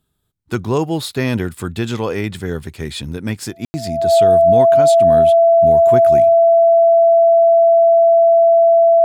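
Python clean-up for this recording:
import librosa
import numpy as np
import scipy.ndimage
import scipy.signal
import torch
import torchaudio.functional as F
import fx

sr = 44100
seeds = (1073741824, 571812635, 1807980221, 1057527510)

y = fx.notch(x, sr, hz=670.0, q=30.0)
y = fx.fix_ambience(y, sr, seeds[0], print_start_s=0.0, print_end_s=0.5, start_s=3.65, end_s=3.74)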